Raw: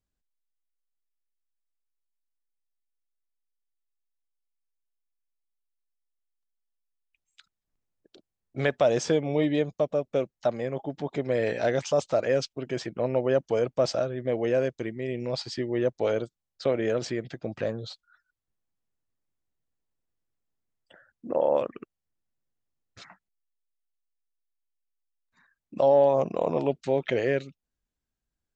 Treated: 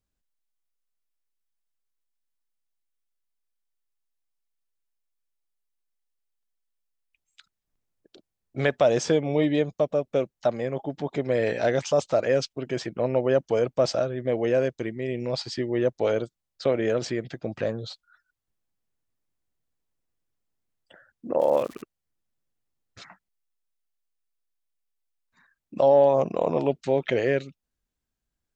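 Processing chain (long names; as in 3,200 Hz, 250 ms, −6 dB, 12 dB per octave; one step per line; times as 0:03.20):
0:21.39–0:21.81: surface crackle 180 per second −35 dBFS
level +2 dB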